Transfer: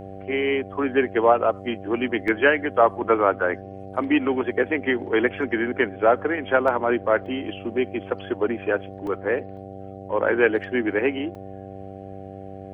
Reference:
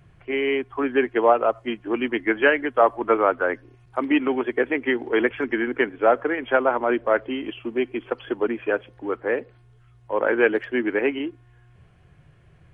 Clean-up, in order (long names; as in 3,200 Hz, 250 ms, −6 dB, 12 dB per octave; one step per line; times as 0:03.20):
hum removal 97 Hz, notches 8
repair the gap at 0:02.28/0:06.68/0:07.26/0:09.07/0:09.57/0:11.35, 2.3 ms